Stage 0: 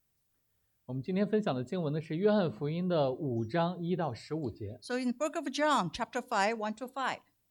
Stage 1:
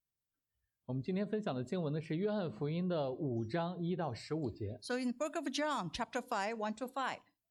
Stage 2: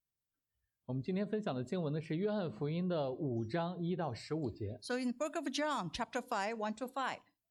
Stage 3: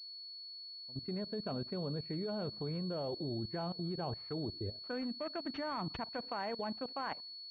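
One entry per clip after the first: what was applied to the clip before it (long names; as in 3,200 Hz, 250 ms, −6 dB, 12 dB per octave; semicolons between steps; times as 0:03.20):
noise reduction from a noise print of the clip's start 16 dB; downward compressor 6 to 1, threshold −33 dBFS, peak gain reduction 10.5 dB
no processing that can be heard
fade in at the beginning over 1.87 s; output level in coarse steps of 21 dB; switching amplifier with a slow clock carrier 4,400 Hz; level +4 dB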